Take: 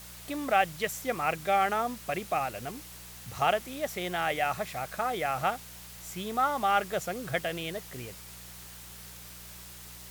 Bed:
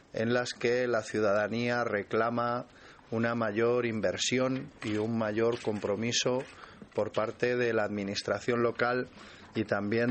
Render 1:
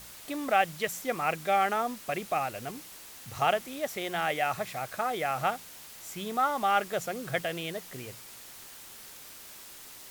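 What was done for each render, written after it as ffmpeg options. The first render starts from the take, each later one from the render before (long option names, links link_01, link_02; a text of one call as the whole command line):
ffmpeg -i in.wav -af "bandreject=frequency=60:width_type=h:width=4,bandreject=frequency=120:width_type=h:width=4,bandreject=frequency=180:width_type=h:width=4" out.wav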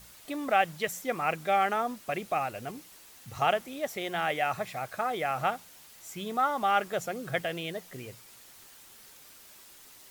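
ffmpeg -i in.wav -af "afftdn=noise_reduction=6:noise_floor=-48" out.wav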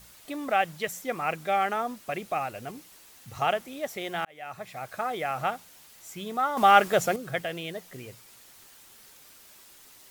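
ffmpeg -i in.wav -filter_complex "[0:a]asplit=4[link_01][link_02][link_03][link_04];[link_01]atrim=end=4.25,asetpts=PTS-STARTPTS,afade=type=out:start_time=4.246:duration=0.004:curve=hsin[link_05];[link_02]atrim=start=4.25:end=6.572,asetpts=PTS-STARTPTS,afade=type=in:duration=0.71[link_06];[link_03]atrim=start=6.568:end=7.162,asetpts=PTS-STARTPTS,volume=8.5dB[link_07];[link_04]atrim=start=7.158[link_08];[link_05][link_06]concat=n=2:v=0:a=1[link_09];[link_09][link_07]acrossfade=duration=0.004:curve1=hsin:curve2=hsin[link_10];[link_10][link_08]acrossfade=duration=0.004:curve1=hsin:curve2=hsin" out.wav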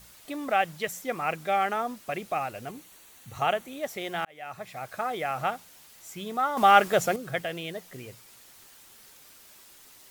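ffmpeg -i in.wav -filter_complex "[0:a]asettb=1/sr,asplit=3[link_01][link_02][link_03];[link_01]atrim=end=2.694[link_04];[link_02]atrim=start=2.69:end=3.83,asetpts=PTS-STARTPTS,afade=type=in:duration=0.004:curve=qsin,afade=type=out:start_time=1.136:duration=0.004:curve=qsin,bandreject=frequency=5100:width=6.1[link_05];[link_03]atrim=start=3.826[link_06];[link_04][link_05]acrossfade=duration=0.004:curve1=hsin:curve2=qsin[link_07];[link_07][link_06]acrossfade=duration=0.004:curve1=qsin:curve2=hsin" out.wav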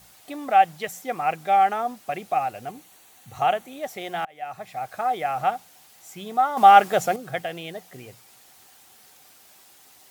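ffmpeg -i in.wav -af "highpass=70,equalizer=frequency=760:width=6.8:gain=11" out.wav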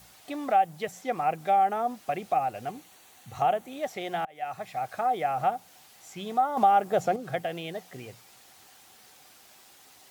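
ffmpeg -i in.wav -filter_complex "[0:a]acrossover=split=890|7200[link_01][link_02][link_03];[link_01]acompressor=threshold=-20dB:ratio=4[link_04];[link_02]acompressor=threshold=-36dB:ratio=4[link_05];[link_03]acompressor=threshold=-57dB:ratio=4[link_06];[link_04][link_05][link_06]amix=inputs=3:normalize=0" out.wav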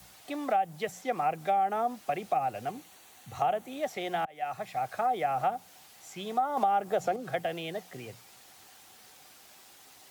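ffmpeg -i in.wav -filter_complex "[0:a]acrossover=split=280[link_01][link_02];[link_01]alimiter=level_in=17dB:limit=-24dB:level=0:latency=1,volume=-17dB[link_03];[link_03][link_02]amix=inputs=2:normalize=0,acrossover=split=190[link_04][link_05];[link_05]acompressor=threshold=-24dB:ratio=4[link_06];[link_04][link_06]amix=inputs=2:normalize=0" out.wav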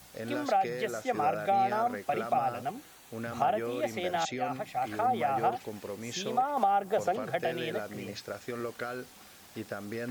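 ffmpeg -i in.wav -i bed.wav -filter_complex "[1:a]volume=-8.5dB[link_01];[0:a][link_01]amix=inputs=2:normalize=0" out.wav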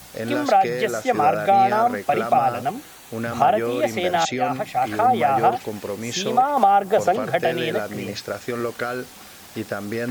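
ffmpeg -i in.wav -af "volume=10.5dB" out.wav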